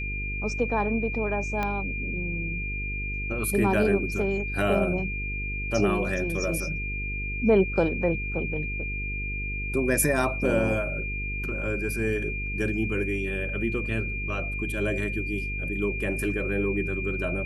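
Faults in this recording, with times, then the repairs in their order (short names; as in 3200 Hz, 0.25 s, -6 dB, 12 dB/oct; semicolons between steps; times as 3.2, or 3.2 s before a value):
buzz 50 Hz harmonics 9 -33 dBFS
tone 2400 Hz -32 dBFS
1.63 pop -15 dBFS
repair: de-click; de-hum 50 Hz, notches 9; notch 2400 Hz, Q 30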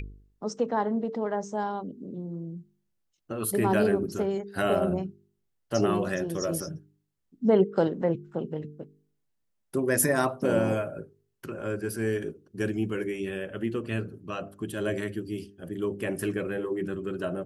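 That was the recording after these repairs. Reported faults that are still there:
1.63 pop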